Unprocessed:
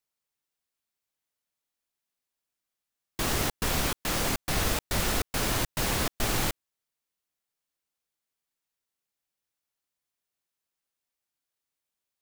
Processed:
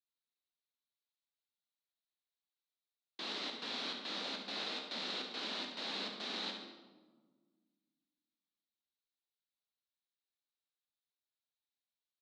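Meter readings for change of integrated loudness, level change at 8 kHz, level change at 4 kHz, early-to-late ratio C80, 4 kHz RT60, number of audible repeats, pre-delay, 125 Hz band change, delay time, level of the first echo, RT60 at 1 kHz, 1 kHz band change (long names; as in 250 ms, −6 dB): −11.5 dB, −25.0 dB, −5.0 dB, 7.0 dB, 0.85 s, 2, 16 ms, −29.5 dB, 70 ms, −9.5 dB, 1.3 s, −13.5 dB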